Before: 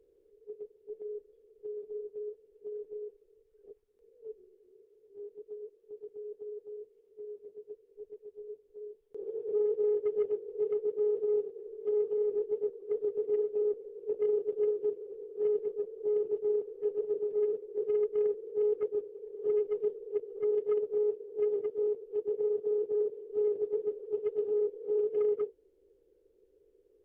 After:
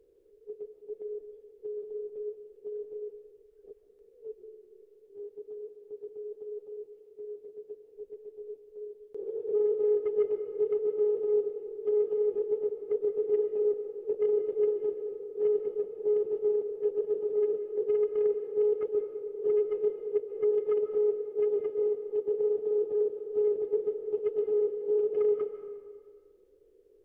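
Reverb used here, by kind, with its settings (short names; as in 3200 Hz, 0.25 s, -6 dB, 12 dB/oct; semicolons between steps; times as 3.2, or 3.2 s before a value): digital reverb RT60 1.8 s, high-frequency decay 0.75×, pre-delay 0.1 s, DRR 8.5 dB; gain +2.5 dB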